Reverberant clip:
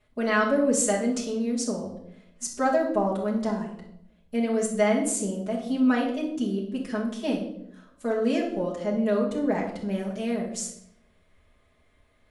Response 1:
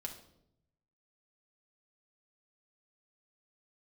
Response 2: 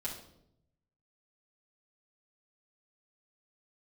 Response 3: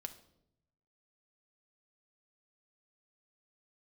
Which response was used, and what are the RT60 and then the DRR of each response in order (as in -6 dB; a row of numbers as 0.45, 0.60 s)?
2; 0.75, 0.75, 0.75 s; 0.5, -7.0, 6.0 dB